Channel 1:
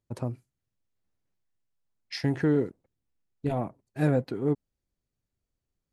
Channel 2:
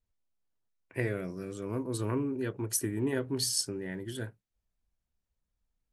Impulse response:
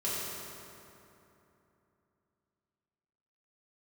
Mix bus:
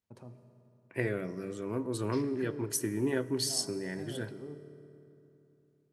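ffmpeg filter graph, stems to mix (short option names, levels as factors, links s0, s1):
-filter_complex "[0:a]alimiter=limit=0.0631:level=0:latency=1:release=109,volume=0.211,asplit=2[s0][s1];[s1]volume=0.282[s2];[1:a]volume=1,asplit=2[s3][s4];[s4]volume=0.0841[s5];[2:a]atrim=start_sample=2205[s6];[s2][s5]amix=inputs=2:normalize=0[s7];[s7][s6]afir=irnorm=-1:irlink=0[s8];[s0][s3][s8]amix=inputs=3:normalize=0,highpass=120,highshelf=f=6500:g=-4.5"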